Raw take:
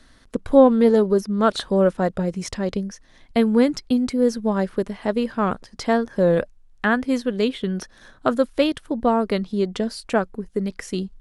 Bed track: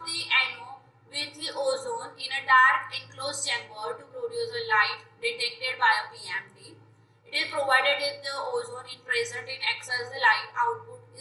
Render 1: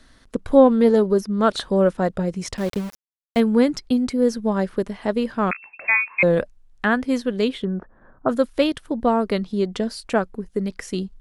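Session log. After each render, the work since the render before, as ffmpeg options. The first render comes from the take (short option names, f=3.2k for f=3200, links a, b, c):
-filter_complex "[0:a]asettb=1/sr,asplit=3[a][b][c];[a]atrim=end=2.574[d];[b]atrim=start=2.57:end=3.4,asetpts=PTS-STARTPTS,afade=t=in:d=0.004:c=qsin,afade=t=out:st=0.826:d=0.004:c=qsin,aeval=exprs='val(0)*gte(abs(val(0)),0.0266)':c=same[e];[c]atrim=start=3.396[f];[d][e]acrossfade=d=0.004:c1=hsin:c2=qsin[g];[g][f]acrossfade=d=0.004:c1=qsin:c2=hsin,asettb=1/sr,asplit=3[h][i][j];[h]atrim=end=5.514[k];[i]atrim=start=5.51:end=6.23,asetpts=PTS-STARTPTS,afade=t=in:d=0.004:c=qsin,afade=t=out:st=0.716:d=0.004:c=qsin,lowpass=f=2.3k:t=q:w=0.5098,lowpass=f=2.3k:t=q:w=0.6013,lowpass=f=2.3k:t=q:w=0.9,lowpass=f=2.3k:t=q:w=2.563,afreqshift=-2700[l];[j]atrim=start=6.226[m];[k][l]acrossfade=d=0.004:c1=hsin:c2=qsin[n];[n][m]acrossfade=d=0.004:c1=qsin:c2=hsin,asplit=3[o][p][q];[o]afade=t=out:st=7.63:d=0.02[r];[p]lowpass=f=1.3k:w=0.5412,lowpass=f=1.3k:w=1.3066,afade=t=in:st=7.63:d=0.02,afade=t=out:st=8.28:d=0.02[s];[q]afade=t=in:st=8.28:d=0.02[t];[r][s][t]amix=inputs=3:normalize=0"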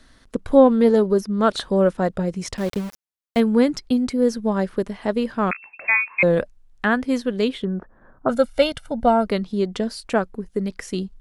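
-filter_complex "[0:a]asettb=1/sr,asplit=3[a][b][c];[a]atrim=end=8.294[d];[b]atrim=start=8.29:end=9.27,asetpts=PTS-STARTPTS,afade=t=in:d=0.004:c=qsin,afade=t=out:st=0.976:d=0.004:c=qsin,aecho=1:1:1.4:0.89,atrim=end_sample=43218[e];[c]atrim=start=9.266[f];[d][e]acrossfade=d=0.004:c1=hsin:c2=qsin[g];[g][f]acrossfade=d=0.004:c1=qsin:c2=hsin"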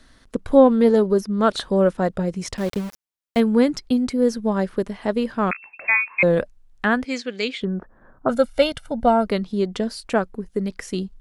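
-filter_complex "[0:a]asplit=3[a][b][c];[a]afade=t=out:st=7.04:d=0.02[d];[b]highpass=340,equalizer=f=370:t=q:w=4:g=-6,equalizer=f=590:t=q:w=4:g=-7,equalizer=f=1k:t=q:w=4:g=-9,equalizer=f=2.3k:t=q:w=4:g=10,equalizer=f=4.6k:t=q:w=4:g=6,equalizer=f=6.9k:t=q:w=4:g=7,lowpass=f=7.9k:w=0.5412,lowpass=f=7.9k:w=1.3066,afade=t=in:st=7.04:d=0.02,afade=t=out:st=7.6:d=0.02[e];[c]afade=t=in:st=7.6:d=0.02[f];[d][e][f]amix=inputs=3:normalize=0"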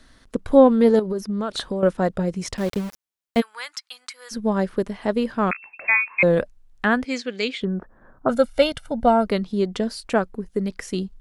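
-filter_complex "[0:a]asettb=1/sr,asplit=3[a][b][c];[a]atrim=end=0.994[d];[b]atrim=start=0.99:end=1.83,asetpts=PTS-STARTPTS,afade=t=in:d=0.004:c=qsin,afade=t=out:st=0.836:d=0.004:c=qsin,acompressor=threshold=-21dB:ratio=10:attack=3.2:release=140:knee=1:detection=peak[e];[c]atrim=start=1.826[f];[d][e]acrossfade=d=0.004:c1=hsin:c2=qsin[g];[g][f]acrossfade=d=0.004:c1=qsin:c2=hsin,asplit=3[h][i][j];[h]afade=t=out:st=3.4:d=0.02[k];[i]highpass=f=1.1k:w=0.5412,highpass=f=1.1k:w=1.3066,afade=t=in:st=3.4:d=0.02,afade=t=out:st=4.31:d=0.02[l];[j]afade=t=in:st=4.31:d=0.02[m];[k][l][m]amix=inputs=3:normalize=0"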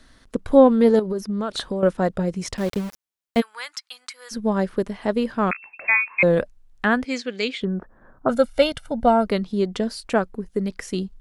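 -af anull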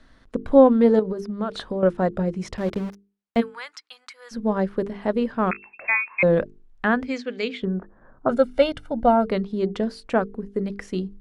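-af "aemphasis=mode=reproduction:type=75kf,bandreject=f=50:t=h:w=6,bandreject=f=100:t=h:w=6,bandreject=f=150:t=h:w=6,bandreject=f=200:t=h:w=6,bandreject=f=250:t=h:w=6,bandreject=f=300:t=h:w=6,bandreject=f=350:t=h:w=6,bandreject=f=400:t=h:w=6,bandreject=f=450:t=h:w=6"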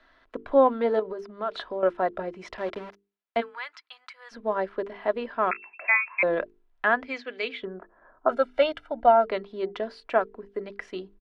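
-filter_complex "[0:a]acrossover=split=440 4100:gain=0.141 1 0.112[a][b][c];[a][b][c]amix=inputs=3:normalize=0,aecho=1:1:3:0.37"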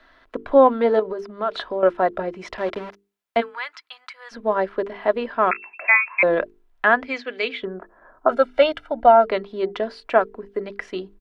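-af "volume=6dB,alimiter=limit=-3dB:level=0:latency=1"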